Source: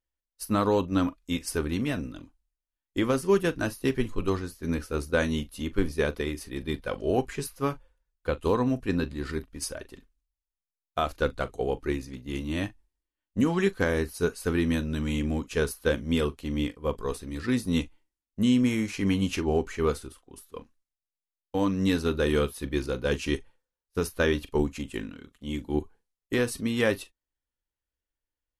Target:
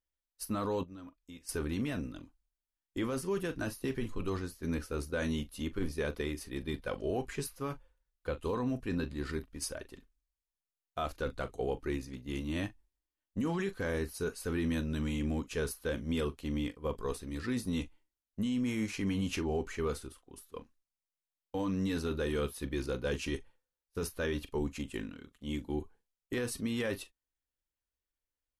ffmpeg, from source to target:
-filter_complex "[0:a]alimiter=limit=-21dB:level=0:latency=1:release=10,asettb=1/sr,asplit=3[a][b][c];[a]atrim=end=0.834[d];[b]atrim=start=0.83:end=1.49,asetpts=PTS-STARTPTS,afade=t=in:d=0.004:c=qsin,afade=t=out:st=0.656:d=0.004:c=qsin,acompressor=threshold=-55dB:ratio=2[e];[c]atrim=start=1.486[f];[d][e]acrossfade=d=0.004:c1=hsin:c2=qsin[g];[g][f]acrossfade=d=0.004:c1=qsin:c2=hsin,volume=-4dB"

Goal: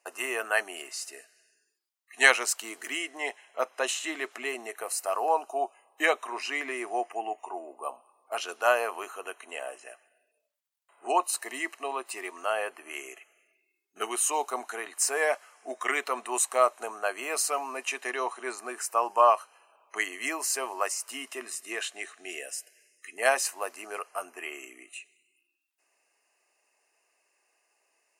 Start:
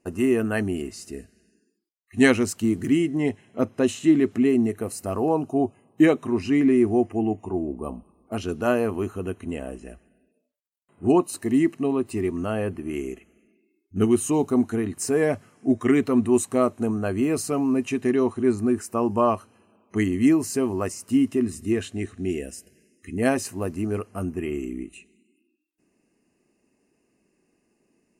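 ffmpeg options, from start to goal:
-af "highpass=f=670:w=0.5412,highpass=f=670:w=1.3066,volume=4dB"

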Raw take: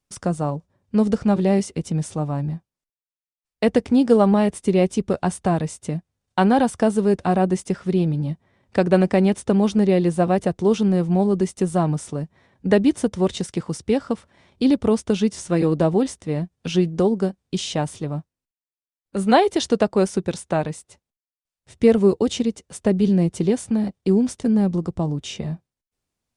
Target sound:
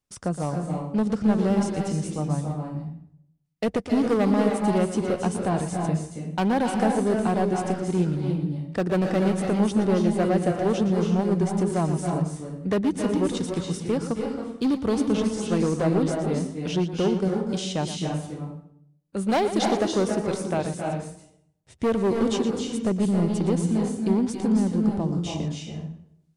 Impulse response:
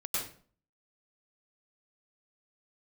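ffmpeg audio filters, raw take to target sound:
-filter_complex "[0:a]asoftclip=type=hard:threshold=-14dB,asplit=2[a][b];[1:a]atrim=start_sample=2205,asetrate=27342,aresample=44100,adelay=117[c];[b][c]afir=irnorm=-1:irlink=0,volume=-10dB[d];[a][d]amix=inputs=2:normalize=0,volume=-4.5dB"

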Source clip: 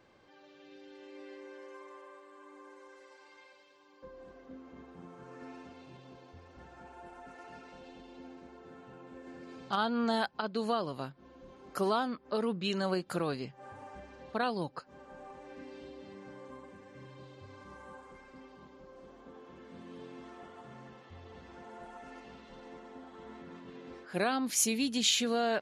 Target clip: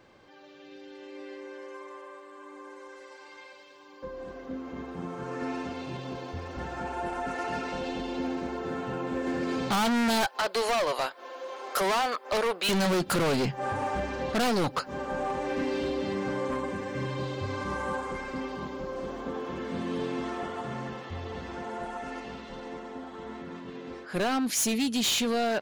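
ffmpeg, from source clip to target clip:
-filter_complex "[0:a]dynaudnorm=f=520:g=21:m=13dB,asoftclip=type=tanh:threshold=-17.5dB,asettb=1/sr,asplit=3[a][b][c];[a]atrim=end=10.244[d];[b]atrim=start=10.24:end=12.69,asetpts=PTS-STARTPTS,afade=t=in:d=0.004:c=qsin,afade=t=out:st=2.446:d=0.004:c=qsin,highpass=f=500:w=0.5412,highpass=f=500:w=1.3066[e];[c]atrim=start=12.686[f];[d][e]acrossfade=d=0.004:c1=hsin:c2=qsin[g];[g][f]acrossfade=d=0.004:c1=qsin:c2=hsin,asoftclip=type=hard:threshold=-30dB,volume=6dB"

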